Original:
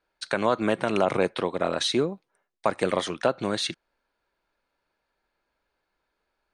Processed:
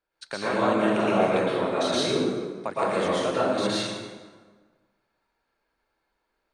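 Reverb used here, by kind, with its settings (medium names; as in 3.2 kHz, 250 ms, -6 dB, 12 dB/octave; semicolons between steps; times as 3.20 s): plate-style reverb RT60 1.5 s, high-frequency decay 0.65×, pre-delay 100 ms, DRR -9 dB; trim -8 dB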